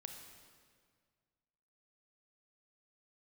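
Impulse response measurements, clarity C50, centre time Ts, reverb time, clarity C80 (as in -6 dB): 5.0 dB, 46 ms, 1.9 s, 6.5 dB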